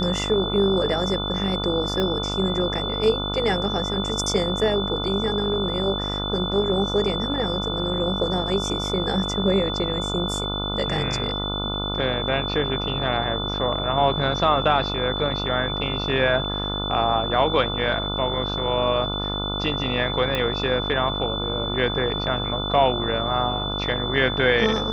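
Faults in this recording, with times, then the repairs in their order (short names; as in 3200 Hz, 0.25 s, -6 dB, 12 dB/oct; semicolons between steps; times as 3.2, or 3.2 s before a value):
buzz 50 Hz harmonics 29 -29 dBFS
tone 3500 Hz -28 dBFS
2 pop -12 dBFS
20.35 pop -11 dBFS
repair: de-click; de-hum 50 Hz, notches 29; notch 3500 Hz, Q 30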